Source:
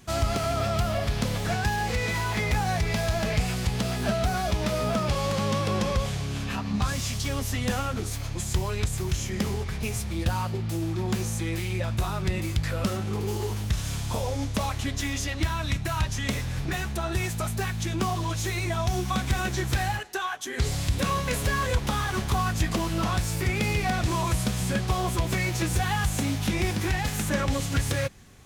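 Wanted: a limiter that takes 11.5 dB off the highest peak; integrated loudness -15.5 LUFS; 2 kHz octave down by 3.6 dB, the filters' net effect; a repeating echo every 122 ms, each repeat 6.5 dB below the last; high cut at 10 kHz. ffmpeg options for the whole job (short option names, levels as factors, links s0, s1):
-af "lowpass=10000,equalizer=f=2000:t=o:g=-4.5,alimiter=level_in=1.19:limit=0.0631:level=0:latency=1,volume=0.841,aecho=1:1:122|244|366|488|610|732:0.473|0.222|0.105|0.0491|0.0231|0.0109,volume=7.5"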